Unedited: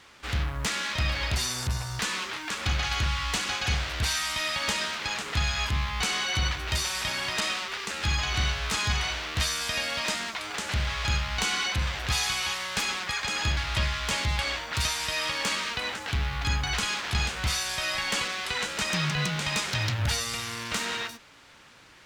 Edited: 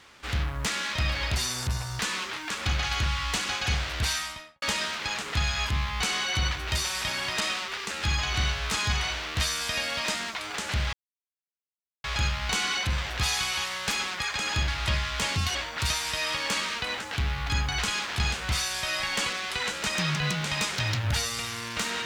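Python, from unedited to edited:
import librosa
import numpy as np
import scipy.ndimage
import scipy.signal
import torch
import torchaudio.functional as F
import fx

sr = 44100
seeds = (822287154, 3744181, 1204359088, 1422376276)

y = fx.studio_fade_out(x, sr, start_s=4.1, length_s=0.52)
y = fx.edit(y, sr, fx.insert_silence(at_s=10.93, length_s=1.11),
    fx.speed_span(start_s=14.25, length_s=0.25, speed=1.31), tone=tone)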